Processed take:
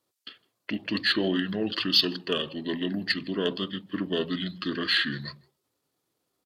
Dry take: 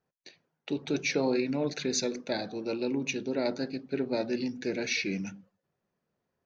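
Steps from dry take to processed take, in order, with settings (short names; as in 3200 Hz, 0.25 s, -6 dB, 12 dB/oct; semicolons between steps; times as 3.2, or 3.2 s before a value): HPF 40 Hz; tone controls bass -11 dB, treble +11 dB; in parallel at -5 dB: soft clip -21 dBFS, distortion -14 dB; on the sum: pitch shift -5.5 st; outdoor echo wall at 27 m, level -28 dB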